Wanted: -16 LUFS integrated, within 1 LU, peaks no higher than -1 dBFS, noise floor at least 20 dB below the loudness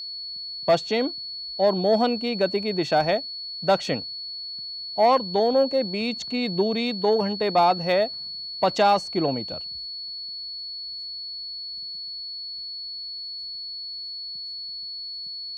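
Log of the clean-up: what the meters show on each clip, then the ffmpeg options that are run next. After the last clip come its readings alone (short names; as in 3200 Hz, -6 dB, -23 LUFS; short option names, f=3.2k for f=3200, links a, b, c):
steady tone 4400 Hz; tone level -32 dBFS; loudness -25.5 LUFS; peak -10.0 dBFS; loudness target -16.0 LUFS
-> -af "bandreject=f=4.4k:w=30"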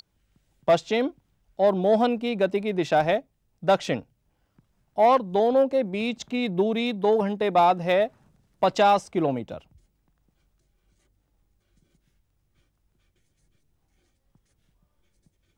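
steady tone none; loudness -23.5 LUFS; peak -10.5 dBFS; loudness target -16.0 LUFS
-> -af "volume=7.5dB"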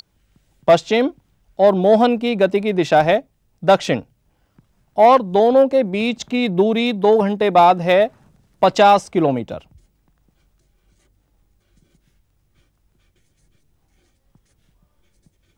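loudness -16.0 LUFS; peak -3.0 dBFS; noise floor -65 dBFS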